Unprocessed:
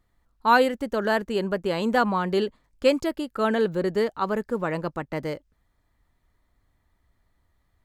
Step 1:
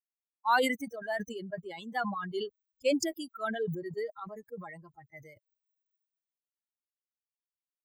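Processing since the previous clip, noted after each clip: expander on every frequency bin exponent 3; high-pass 410 Hz 12 dB/octave; decay stretcher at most 42 dB/s; trim -4.5 dB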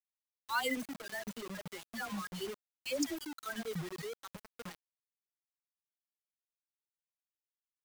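peaking EQ 730 Hz -9.5 dB 1.5 oct; phase dispersion lows, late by 81 ms, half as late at 940 Hz; bit crusher 7-bit; trim -3 dB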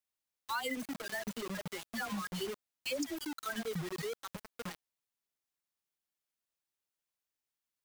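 compression 4:1, threshold -38 dBFS, peak gain reduction 9 dB; trim +4 dB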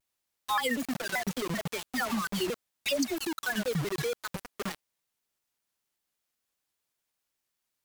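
vibrato with a chosen wave saw down 5.2 Hz, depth 250 cents; trim +7.5 dB

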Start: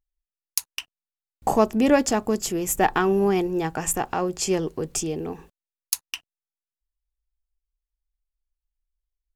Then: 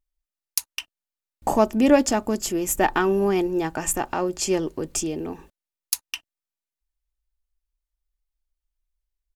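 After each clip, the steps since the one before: comb 3.3 ms, depth 33%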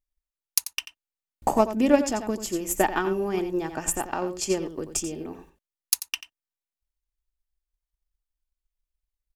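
on a send: delay 89 ms -9 dB; on the sum: transient shaper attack +8 dB, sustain +1 dB; trim -6.5 dB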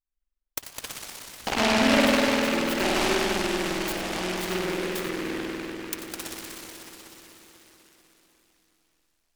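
reverberation RT60 4.6 s, pre-delay 49 ms, DRR -9.5 dB; delay time shaken by noise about 1.7 kHz, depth 0.21 ms; trim -8 dB

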